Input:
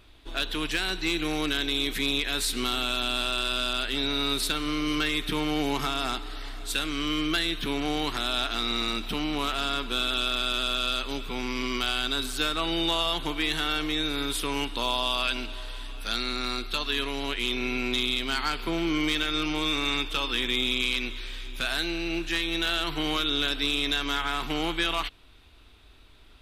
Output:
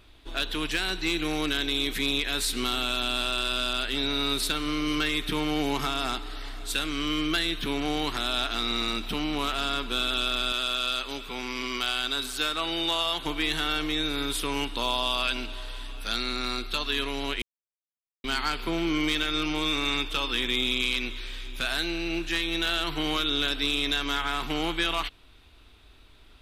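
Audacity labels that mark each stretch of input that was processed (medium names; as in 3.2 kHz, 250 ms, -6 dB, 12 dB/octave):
10.520000	13.260000	bass shelf 290 Hz -8.5 dB
17.420000	18.240000	mute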